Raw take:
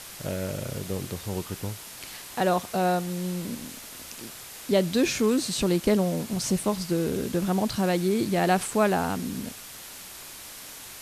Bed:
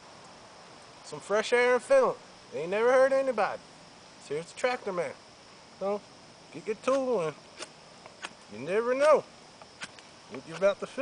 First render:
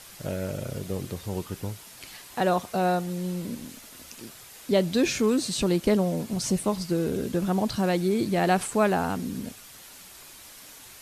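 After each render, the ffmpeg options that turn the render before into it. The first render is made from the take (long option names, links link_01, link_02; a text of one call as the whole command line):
ffmpeg -i in.wav -af "afftdn=noise_reduction=6:noise_floor=-43" out.wav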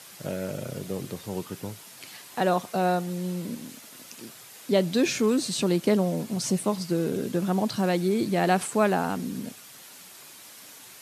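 ffmpeg -i in.wav -af "highpass=frequency=120:width=0.5412,highpass=frequency=120:width=1.3066" out.wav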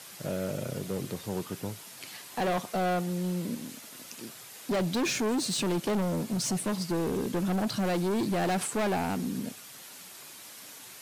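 ffmpeg -i in.wav -af "asoftclip=type=hard:threshold=-25.5dB" out.wav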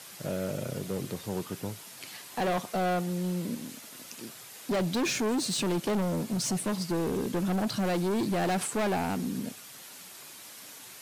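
ffmpeg -i in.wav -af anull out.wav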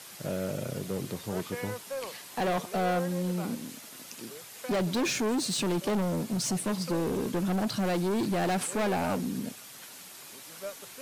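ffmpeg -i in.wav -i bed.wav -filter_complex "[1:a]volume=-14.5dB[link_01];[0:a][link_01]amix=inputs=2:normalize=0" out.wav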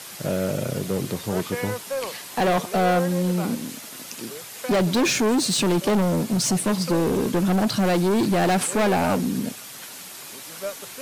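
ffmpeg -i in.wav -af "volume=8dB" out.wav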